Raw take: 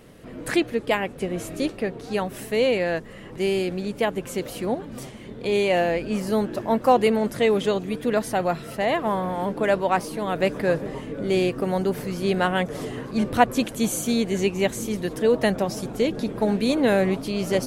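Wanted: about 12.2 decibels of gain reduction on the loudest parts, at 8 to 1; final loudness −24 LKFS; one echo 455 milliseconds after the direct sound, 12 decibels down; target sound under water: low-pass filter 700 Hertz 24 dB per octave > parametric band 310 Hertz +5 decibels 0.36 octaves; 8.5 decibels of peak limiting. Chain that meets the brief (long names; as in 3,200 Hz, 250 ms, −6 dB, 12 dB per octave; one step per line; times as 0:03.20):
downward compressor 8 to 1, threshold −24 dBFS
brickwall limiter −23 dBFS
low-pass filter 700 Hz 24 dB per octave
parametric band 310 Hz +5 dB 0.36 octaves
single-tap delay 455 ms −12 dB
level +8.5 dB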